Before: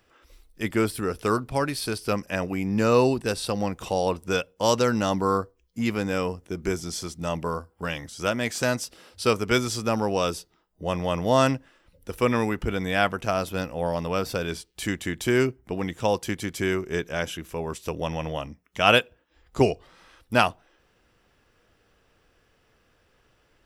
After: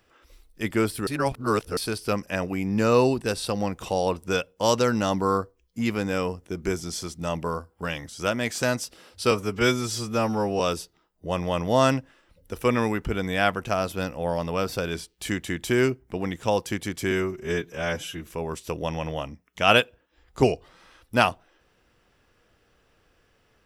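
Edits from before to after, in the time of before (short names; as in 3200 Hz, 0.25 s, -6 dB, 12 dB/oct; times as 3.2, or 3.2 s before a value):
1.07–1.77 reverse
9.31–10.17 stretch 1.5×
16.68–17.45 stretch 1.5×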